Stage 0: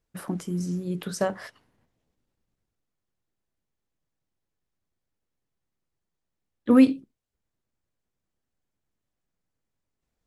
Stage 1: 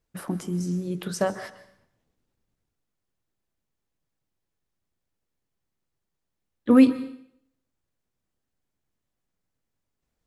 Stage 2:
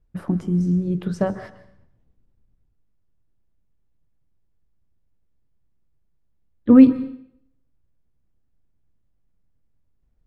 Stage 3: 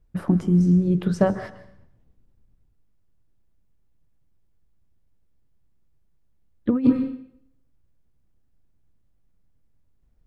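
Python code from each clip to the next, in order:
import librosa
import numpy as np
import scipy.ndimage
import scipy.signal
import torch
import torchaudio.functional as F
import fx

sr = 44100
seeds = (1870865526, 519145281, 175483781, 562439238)

y1 = fx.rev_plate(x, sr, seeds[0], rt60_s=0.66, hf_ratio=0.95, predelay_ms=115, drr_db=14.5)
y1 = y1 * librosa.db_to_amplitude(1.0)
y2 = fx.riaa(y1, sr, side='playback')
y2 = y2 * librosa.db_to_amplitude(-1.0)
y3 = fx.over_compress(y2, sr, threshold_db=-14.0, ratio=-0.5)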